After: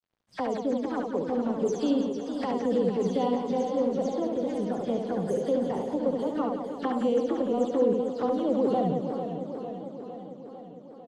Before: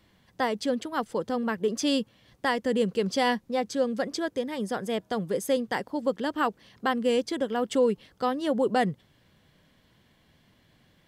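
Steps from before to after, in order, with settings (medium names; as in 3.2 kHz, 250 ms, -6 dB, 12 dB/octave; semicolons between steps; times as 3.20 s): delay that grows with frequency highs early, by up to 127 ms; peaking EQ 2.6 kHz -13 dB 1.2 oct; hum notches 50/100 Hz; in parallel at +2 dB: compression 10:1, threshold -39 dBFS, peak gain reduction 20 dB; on the sum: touch-sensitive flanger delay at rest 10.8 ms, full sweep at -25 dBFS; crossover distortion -53.5 dBFS; distance through air 95 m; on a send: reverse bouncing-ball echo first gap 70 ms, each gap 1.5×, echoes 5; on the sum: modulated delay 452 ms, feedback 66%, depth 108 cents, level -9.5 dB; trim -1.5 dB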